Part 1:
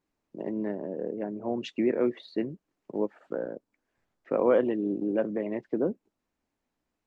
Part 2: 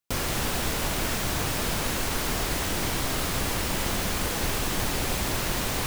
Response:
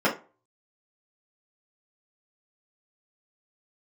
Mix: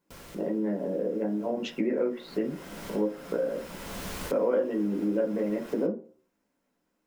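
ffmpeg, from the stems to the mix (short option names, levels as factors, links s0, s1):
-filter_complex "[0:a]highshelf=f=4600:g=8,volume=0.794,asplit=3[s0][s1][s2];[s1]volume=0.282[s3];[1:a]volume=0.316,afade=t=in:st=1.96:d=0.8:silence=0.298538,asplit=2[s4][s5];[s5]volume=0.0944[s6];[s2]apad=whole_len=262922[s7];[s4][s7]sidechaincompress=threshold=0.00316:ratio=3:attack=11:release=415[s8];[2:a]atrim=start_sample=2205[s9];[s3][s6]amix=inputs=2:normalize=0[s10];[s10][s9]afir=irnorm=-1:irlink=0[s11];[s0][s8][s11]amix=inputs=3:normalize=0,acompressor=threshold=0.0398:ratio=2.5"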